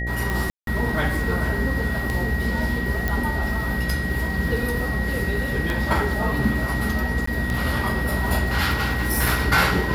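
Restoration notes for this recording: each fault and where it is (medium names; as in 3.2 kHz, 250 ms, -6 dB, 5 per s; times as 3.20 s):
buzz 60 Hz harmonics 13 -27 dBFS
tick 33 1/3 rpm
whine 1.9 kHz -28 dBFS
0.50–0.67 s: dropout 172 ms
3.08 s: pop -10 dBFS
7.26–7.27 s: dropout 14 ms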